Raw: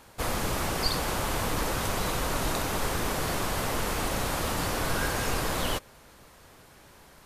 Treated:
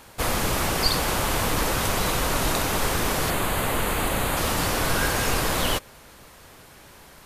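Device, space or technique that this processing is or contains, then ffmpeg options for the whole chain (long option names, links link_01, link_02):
presence and air boost: -filter_complex "[0:a]asettb=1/sr,asplit=3[link_01][link_02][link_03];[link_01]atrim=end=3.304[link_04];[link_02]atrim=start=3.3:end=4.37,asetpts=PTS-STARTPTS,afade=type=in:duration=0.004:curve=qsin,afade=type=out:start_time=1.066:duration=0.004:curve=qsin,equalizer=frequency=5500:width_type=o:width=0.39:gain=-14[link_05];[link_03]atrim=start=4.366[link_06];[link_04][link_05]acrossfade=duration=0.004:curve1=hsin:curve2=qsin[link_07];[link_07][link_06]acrossfade=duration=0.004:curve1=qsin:curve2=hsin,equalizer=frequency=2700:width_type=o:width=1.4:gain=2,highshelf=frequency=9200:gain=4,volume=4.5dB"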